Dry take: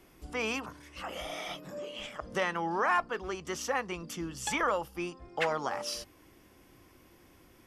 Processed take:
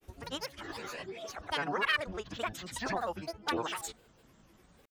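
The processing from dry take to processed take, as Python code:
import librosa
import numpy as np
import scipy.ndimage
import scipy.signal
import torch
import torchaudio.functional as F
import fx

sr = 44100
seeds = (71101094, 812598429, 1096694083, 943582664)

y = fx.stretch_vocoder(x, sr, factor=0.64)
y = fx.granulator(y, sr, seeds[0], grain_ms=100.0, per_s=20.0, spray_ms=100.0, spread_st=12)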